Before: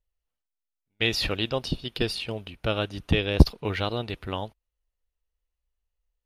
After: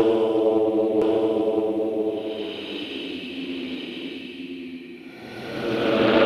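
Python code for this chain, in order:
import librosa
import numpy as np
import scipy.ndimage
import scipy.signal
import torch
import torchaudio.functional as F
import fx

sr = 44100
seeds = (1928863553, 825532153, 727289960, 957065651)

p1 = fx.filter_sweep_highpass(x, sr, from_hz=2400.0, to_hz=120.0, start_s=0.04, end_s=3.62, q=4.0)
p2 = fx.paulstretch(p1, sr, seeds[0], factor=17.0, window_s=0.1, from_s=2.31)
p3 = p2 + fx.echo_single(p2, sr, ms=1016, db=-3.5, dry=0)
p4 = fx.doppler_dist(p3, sr, depth_ms=0.25)
y = p4 * 10.0 ** (6.0 / 20.0)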